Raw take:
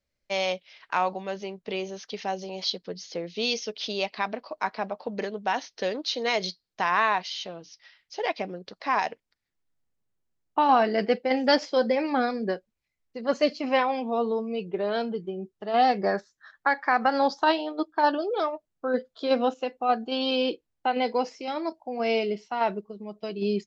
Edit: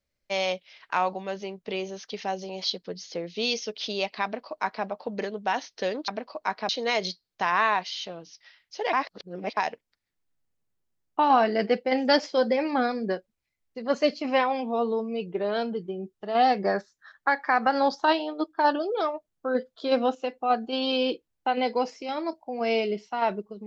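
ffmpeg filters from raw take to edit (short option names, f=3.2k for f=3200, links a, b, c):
-filter_complex "[0:a]asplit=5[a][b][c][d][e];[a]atrim=end=6.082[f];[b]atrim=start=4.238:end=4.852[g];[c]atrim=start=6.078:end=8.322[h];[d]atrim=start=8.318:end=8.962,asetpts=PTS-STARTPTS,areverse[i];[e]atrim=start=8.958[j];[f][g]acrossfade=d=0.004:c1=hsin:c2=hsin[k];[k][h]acrossfade=d=0.004:c1=hsin:c2=hsin[l];[l][i]acrossfade=d=0.004:c1=hsin:c2=hsin[m];[m][j]acrossfade=d=0.004:c1=hsin:c2=hsin"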